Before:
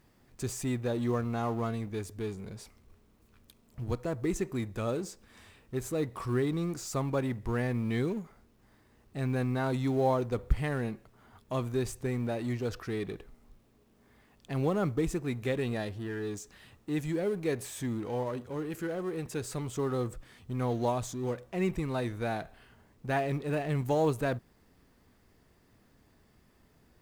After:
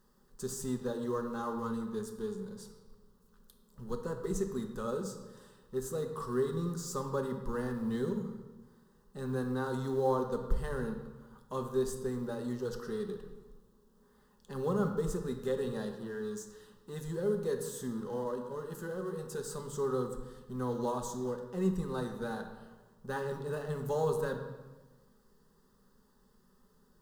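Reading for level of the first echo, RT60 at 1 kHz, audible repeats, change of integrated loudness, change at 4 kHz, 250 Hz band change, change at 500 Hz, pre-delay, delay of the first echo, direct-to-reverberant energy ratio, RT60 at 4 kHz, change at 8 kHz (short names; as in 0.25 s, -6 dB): none, 1.2 s, none, -3.0 dB, -5.0 dB, -3.5 dB, -1.5 dB, 3 ms, none, 4.5 dB, 1.0 s, -1.5 dB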